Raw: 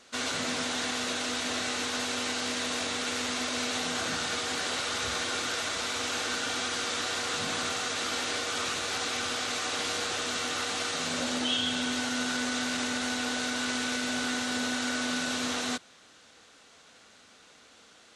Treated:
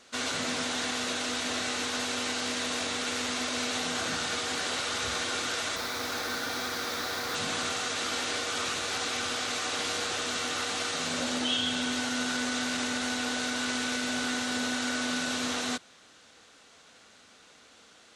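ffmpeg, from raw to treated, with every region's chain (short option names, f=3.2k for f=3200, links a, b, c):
-filter_complex "[0:a]asettb=1/sr,asplit=3[a][b][c];[a]atrim=end=5.764[d];[b]atrim=start=5.76:end=7.35,asetpts=PTS-STARTPTS,afade=t=in:d=0.004:c=qsin,afade=t=out:st=1.586:d=0.004:c=qsin,lowpass=f=5.8k:w=0.5412,lowpass=f=5.8k:w=1.3066,equalizer=f=2.9k:w=3.5:g=-9,acrusher=bits=5:mix=0:aa=0.5[e];[c]atrim=start=7.346[f];[d][e]acrossfade=d=0.004:c1=hsin:c2=qsin[g];[g][f]acrossfade=d=0.004:c1=qsin:c2=hsin"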